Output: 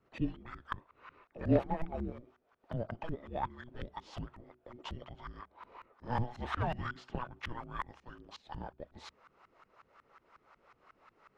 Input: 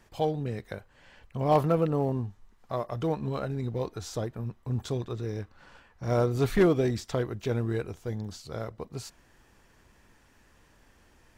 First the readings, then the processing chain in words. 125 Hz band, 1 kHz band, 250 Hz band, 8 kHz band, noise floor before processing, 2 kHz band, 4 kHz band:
-11.0 dB, -6.0 dB, -9.0 dB, under -15 dB, -62 dBFS, -4.0 dB, -7.5 dB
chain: peaking EQ 3.1 kHz +10 dB 2.4 oct; hum notches 60/120/180/240/300/360/420 Hz; LFO low-pass saw up 5.5 Hz 550–1800 Hz; differentiator; frequency shift -490 Hz; trim +8.5 dB

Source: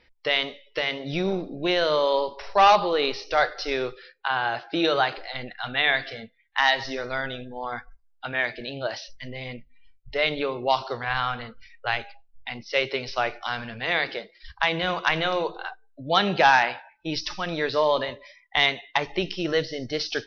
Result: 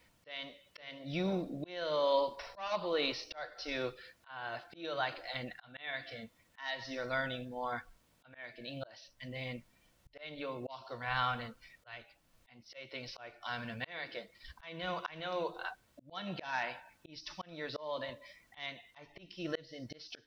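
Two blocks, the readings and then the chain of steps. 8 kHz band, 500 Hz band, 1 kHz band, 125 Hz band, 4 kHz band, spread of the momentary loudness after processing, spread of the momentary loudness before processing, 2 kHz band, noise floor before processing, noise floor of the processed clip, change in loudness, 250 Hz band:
no reading, -13.0 dB, -16.5 dB, -10.0 dB, -15.5 dB, 17 LU, 14 LU, -16.0 dB, -61 dBFS, -71 dBFS, -14.5 dB, -11.5 dB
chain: added noise pink -64 dBFS; comb of notches 410 Hz; slow attack 553 ms; trim -5 dB

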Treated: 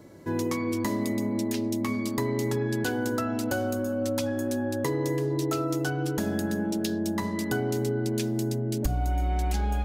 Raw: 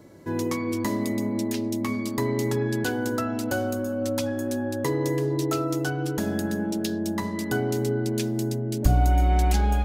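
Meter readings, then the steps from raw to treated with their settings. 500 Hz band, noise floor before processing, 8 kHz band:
-1.5 dB, -30 dBFS, -1.5 dB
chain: compression 6:1, threshold -23 dBFS, peak gain reduction 9.5 dB

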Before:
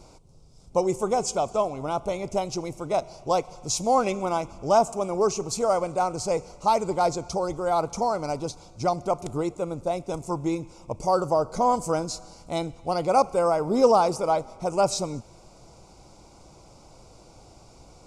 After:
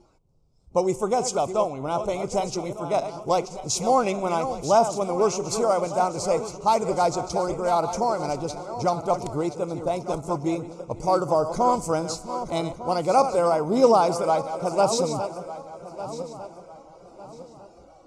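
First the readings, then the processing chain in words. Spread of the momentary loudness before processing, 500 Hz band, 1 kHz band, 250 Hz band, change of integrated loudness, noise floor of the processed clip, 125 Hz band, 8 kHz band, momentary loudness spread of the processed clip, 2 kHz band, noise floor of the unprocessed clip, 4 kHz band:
9 LU, +1.5 dB, +1.5 dB, +1.5 dB, +1.5 dB, -51 dBFS, +1.5 dB, +1.5 dB, 13 LU, +1.5 dB, -52 dBFS, +1.5 dB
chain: backward echo that repeats 601 ms, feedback 59%, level -10 dB; spectral noise reduction 12 dB; tape noise reduction on one side only decoder only; trim +1 dB

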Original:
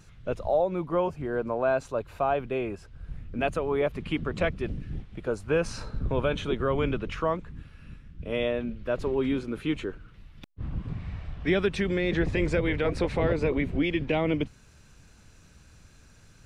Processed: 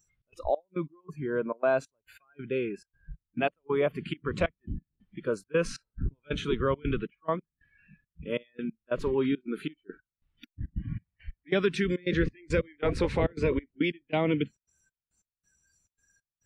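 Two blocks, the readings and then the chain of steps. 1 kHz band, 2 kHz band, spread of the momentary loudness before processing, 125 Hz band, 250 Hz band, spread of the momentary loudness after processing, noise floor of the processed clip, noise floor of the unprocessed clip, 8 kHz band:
-4.0 dB, -2.5 dB, 11 LU, -3.0 dB, -2.5 dB, 13 LU, under -85 dBFS, -55 dBFS, -1.0 dB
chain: trance gate "xx.xx..x..xx" 138 bpm -24 dB; spectral noise reduction 26 dB

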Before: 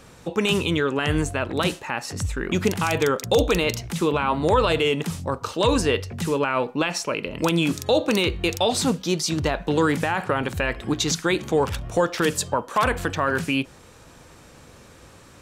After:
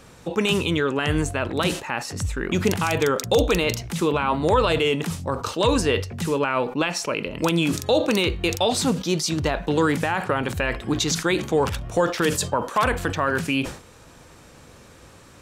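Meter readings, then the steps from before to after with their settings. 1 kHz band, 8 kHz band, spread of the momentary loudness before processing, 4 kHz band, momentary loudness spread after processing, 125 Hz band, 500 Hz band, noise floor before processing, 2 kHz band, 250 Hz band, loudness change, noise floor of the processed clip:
0.0 dB, +0.5 dB, 6 LU, +0.5 dB, 6 LU, +0.5 dB, 0.0 dB, -48 dBFS, +0.5 dB, +0.5 dB, +0.5 dB, -48 dBFS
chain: decay stretcher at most 120 dB/s

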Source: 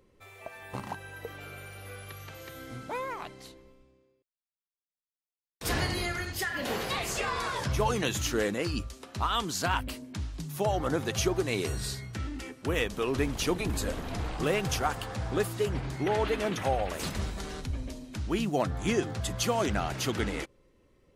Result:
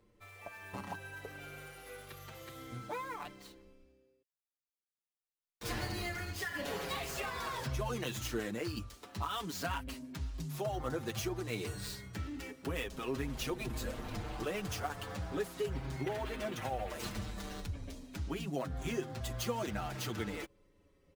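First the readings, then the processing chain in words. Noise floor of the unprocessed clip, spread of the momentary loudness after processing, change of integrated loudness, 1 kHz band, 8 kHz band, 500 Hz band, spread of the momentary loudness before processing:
under -85 dBFS, 10 LU, -8.5 dB, -8.5 dB, -9.5 dB, -8.5 dB, 14 LU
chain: dead-time distortion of 0.051 ms; compression 2:1, threshold -33 dBFS, peak gain reduction 6.5 dB; endless flanger 6.3 ms -0.35 Hz; trim -1 dB

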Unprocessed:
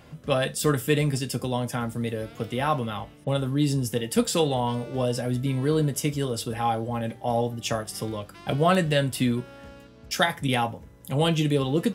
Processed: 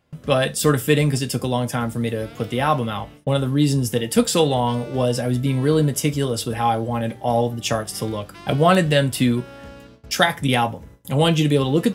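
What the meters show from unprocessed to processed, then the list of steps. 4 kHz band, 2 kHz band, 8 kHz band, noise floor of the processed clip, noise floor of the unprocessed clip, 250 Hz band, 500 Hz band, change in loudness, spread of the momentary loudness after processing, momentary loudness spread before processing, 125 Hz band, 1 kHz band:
+5.5 dB, +5.5 dB, +5.5 dB, -45 dBFS, -50 dBFS, +5.5 dB, +5.5 dB, +5.5 dB, 9 LU, 9 LU, +5.5 dB, +5.5 dB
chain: gate with hold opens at -39 dBFS; trim +5.5 dB

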